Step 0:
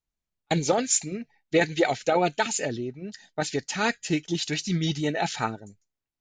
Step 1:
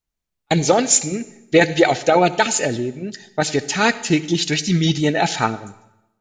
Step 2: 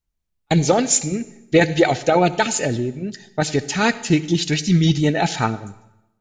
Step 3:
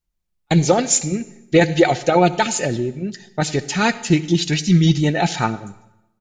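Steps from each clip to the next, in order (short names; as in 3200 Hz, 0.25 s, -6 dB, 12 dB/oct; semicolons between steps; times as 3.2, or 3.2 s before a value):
AGC gain up to 4.5 dB; reverb RT60 0.90 s, pre-delay 57 ms, DRR 16 dB; gain +4 dB
low shelf 180 Hz +9.5 dB; gain -2.5 dB
comb 5.6 ms, depth 30%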